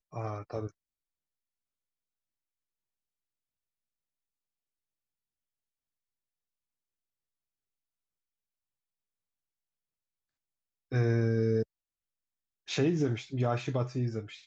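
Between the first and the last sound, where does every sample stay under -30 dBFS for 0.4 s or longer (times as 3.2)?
0.66–10.93
11.63–12.7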